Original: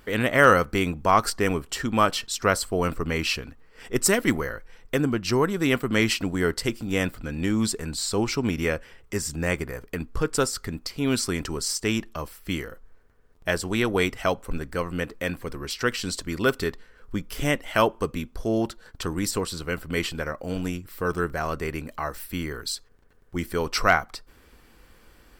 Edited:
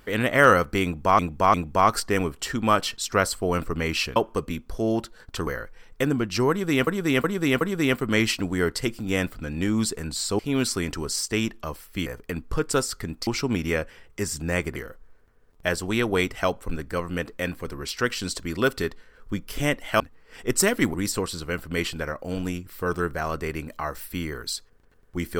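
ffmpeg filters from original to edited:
-filter_complex "[0:a]asplit=14[a][b][c][d][e][f][g][h][i][j][k][l][m][n];[a]atrim=end=1.192[o];[b]atrim=start=0.838:end=1.192[p];[c]atrim=start=0.838:end=3.462[q];[d]atrim=start=17.818:end=19.132[r];[e]atrim=start=4.398:end=5.802[s];[f]atrim=start=5.428:end=5.802[t];[g]atrim=start=5.428:end=5.802[u];[h]atrim=start=5.428:end=8.212[v];[i]atrim=start=10.908:end=12.582[w];[j]atrim=start=9.698:end=10.912[x];[k]atrim=start=8.208:end=9.702[y];[l]atrim=start=12.578:end=17.822[z];[m]atrim=start=3.458:end=4.402[aa];[n]atrim=start=19.128[ab];[o][p]acrossfade=d=0.004:c1=hsin:c2=hsin[ac];[ac][q]acrossfade=d=0.004:c1=hsin:c2=hsin[ad];[ad][r]acrossfade=d=0.004:c1=hsin:c2=hsin[ae];[ae][s]acrossfade=d=0.004:c1=hsin:c2=hsin[af];[af][t]acrossfade=d=0.004:c1=hsin:c2=hsin[ag];[ag][u]acrossfade=d=0.004:c1=hsin:c2=hsin[ah];[ah][v]acrossfade=d=0.004:c1=hsin:c2=hsin[ai];[ai][w]acrossfade=d=0.004:c1=hsin:c2=hsin[aj];[aj][x]acrossfade=d=0.004:c1=hsin:c2=hsin[ak];[ak][y]acrossfade=d=0.004:c1=hsin:c2=hsin[al];[al][z]acrossfade=d=0.004:c1=hsin:c2=hsin[am];[am][aa]acrossfade=d=0.004:c1=hsin:c2=hsin[an];[an][ab]acrossfade=d=0.004:c1=hsin:c2=hsin"

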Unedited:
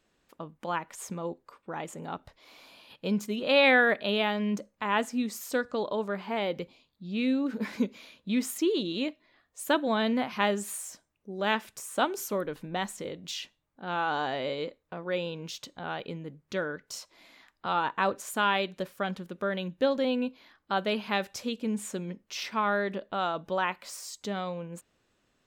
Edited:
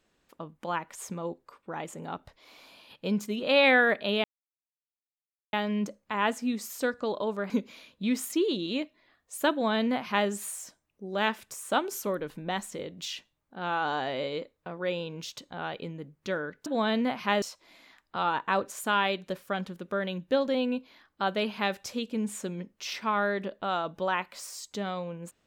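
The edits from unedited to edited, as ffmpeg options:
-filter_complex "[0:a]asplit=5[a][b][c][d][e];[a]atrim=end=4.24,asetpts=PTS-STARTPTS,afade=t=out:st=4.236:d=0.004:c=hsin,apad=pad_dur=1.29[f];[b]atrim=start=4.24:end=6.212,asetpts=PTS-STARTPTS,afade=t=in:d=0.004:c=hsin[g];[c]atrim=start=7.758:end=16.922[h];[d]atrim=start=9.778:end=10.542[i];[e]atrim=start=16.918[j];[f][g]concat=n=2:v=0:a=1[k];[k][h]acrossfade=d=0.004:c1=hsin:c2=hsin[l];[l][i]acrossfade=d=0.004:c1=hsin:c2=hsin[m];[m][j]acrossfade=d=0.004:c1=hsin:c2=hsin"

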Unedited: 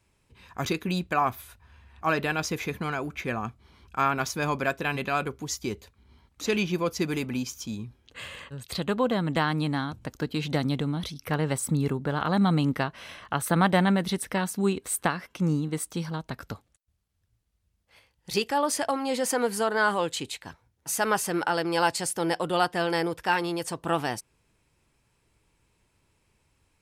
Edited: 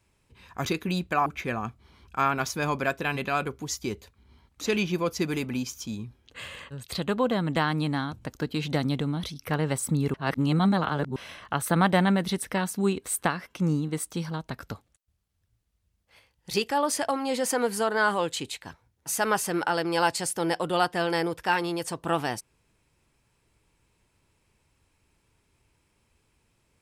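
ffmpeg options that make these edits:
-filter_complex "[0:a]asplit=4[a][b][c][d];[a]atrim=end=1.262[e];[b]atrim=start=3.058:end=11.942[f];[c]atrim=start=11.938:end=12.962,asetpts=PTS-STARTPTS,areverse[g];[d]atrim=start=12.958[h];[e][f]acrossfade=d=0.004:c1=hsin:c2=hsin[i];[i][g]acrossfade=d=0.004:c1=hsin:c2=hsin[j];[j][h]acrossfade=d=0.004:c1=hsin:c2=hsin"

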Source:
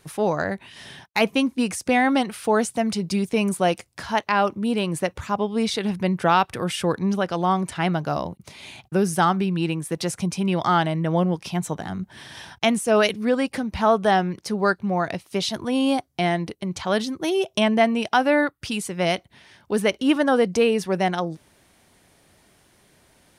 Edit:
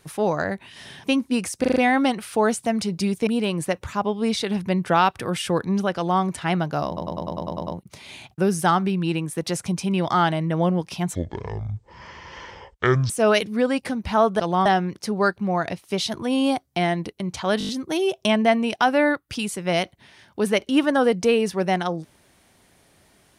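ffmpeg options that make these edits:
-filter_complex "[0:a]asplit=24[a][b][c][d][e][f][g][h][i][j][k][l][m][n][o][p][q][r][s][t][u][v][w][x];[a]atrim=end=1.042[y];[b]atrim=start=1.308:end=1.912[z];[c]atrim=start=1.868:end=1.912[aa];[d]atrim=start=1.868:end=1.912[ab];[e]atrim=start=1.868:end=1.912[ac];[f]atrim=start=1.868:end=3.382[ad];[g]atrim=start=4.608:end=8.312[ae];[h]atrim=start=8.208:end=8.312[af];[i]atrim=start=8.208:end=8.312[ag];[j]atrim=start=8.208:end=8.312[ah];[k]atrim=start=8.208:end=8.312[ai];[l]atrim=start=8.208:end=8.312[aj];[m]atrim=start=8.208:end=8.312[ak];[n]atrim=start=8.208:end=8.312[al];[o]atrim=start=8.208:end=11.694[am];[p]atrim=start=11.69:end=12.78,asetpts=PTS-STARTPTS,asetrate=24696,aresample=44100,atrim=end_sample=85837,asetpts=PTS-STARTPTS[an];[q]atrim=start=12.776:end=14.082[ao];[r]atrim=start=7.298:end=7.562[ap];[s]atrim=start=14.078:end=17.032[aq];[t]atrim=start=17.008:end=17.032[ar];[u]atrim=start=17.008:end=17.032[as];[v]atrim=start=17.008:end=17.032[at];[w]atrim=start=17.008:end=17.032[au];[x]atrim=start=17.008[av];[y][z]acrossfade=d=0.004:c1=hsin:c2=hsin[aw];[aw][aa]acrossfade=d=0.004:c1=hsin:c2=hsin[ax];[ax][ab]acrossfade=d=0.004:c1=hsin:c2=hsin[ay];[ay][ac]acrossfade=d=0.004:c1=hsin:c2=hsin[az];[az][ad]acrossfade=d=0.004:c1=hsin:c2=hsin[ba];[ba][ae]acrossfade=d=0.004:c1=hsin:c2=hsin[bb];[bb][af]acrossfade=d=0.004:c1=hsin:c2=hsin[bc];[bc][ag]acrossfade=d=0.004:c1=hsin:c2=hsin[bd];[bd][ah]acrossfade=d=0.004:c1=hsin:c2=hsin[be];[be][ai]acrossfade=d=0.004:c1=hsin:c2=hsin[bf];[bf][aj]acrossfade=d=0.004:c1=hsin:c2=hsin[bg];[bg][ak]acrossfade=d=0.004:c1=hsin:c2=hsin[bh];[bh][al]acrossfade=d=0.004:c1=hsin:c2=hsin[bi];[bi][am]acrossfade=d=0.004:c1=hsin:c2=hsin[bj];[bj][an]acrossfade=d=0.004:c1=hsin:c2=hsin[bk];[bk][ao]acrossfade=d=0.004:c1=hsin:c2=hsin[bl];[bl][ap]acrossfade=d=0.004:c1=hsin:c2=hsin[bm];[bm][aq]acrossfade=d=0.004:c1=hsin:c2=hsin[bn];[bn][ar]acrossfade=d=0.004:c1=hsin:c2=hsin[bo];[bo][as]acrossfade=d=0.004:c1=hsin:c2=hsin[bp];[bp][at]acrossfade=d=0.004:c1=hsin:c2=hsin[bq];[bq][au]acrossfade=d=0.004:c1=hsin:c2=hsin[br];[br][av]acrossfade=d=0.004:c1=hsin:c2=hsin"

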